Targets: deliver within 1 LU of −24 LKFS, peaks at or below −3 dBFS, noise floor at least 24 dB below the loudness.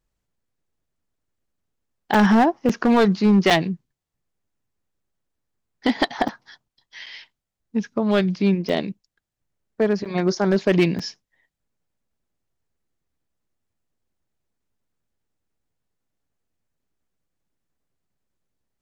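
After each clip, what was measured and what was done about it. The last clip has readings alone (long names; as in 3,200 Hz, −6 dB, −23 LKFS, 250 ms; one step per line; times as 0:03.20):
share of clipped samples 0.5%; peaks flattened at −10.5 dBFS; number of dropouts 8; longest dropout 5.3 ms; integrated loudness −20.5 LKFS; sample peak −10.5 dBFS; target loudness −24.0 LKFS
→ clipped peaks rebuilt −10.5 dBFS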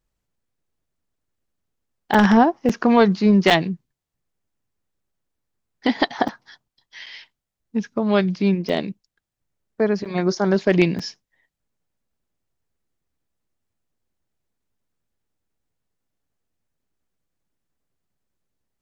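share of clipped samples 0.0%; number of dropouts 8; longest dropout 5.3 ms
→ repair the gap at 0:02.14/0:02.69/0:03.50/0:06.28/0:07.06/0:08.69/0:10.05/0:10.99, 5.3 ms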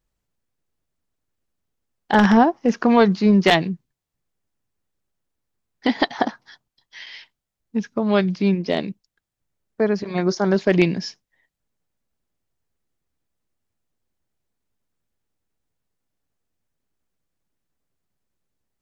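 number of dropouts 0; integrated loudness −19.5 LKFS; sample peak −1.5 dBFS; target loudness −24.0 LKFS
→ level −4.5 dB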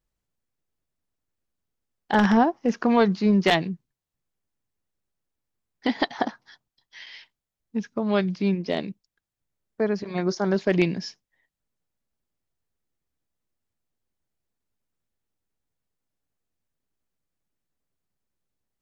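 integrated loudness −24.0 LKFS; sample peak −6.0 dBFS; background noise floor −86 dBFS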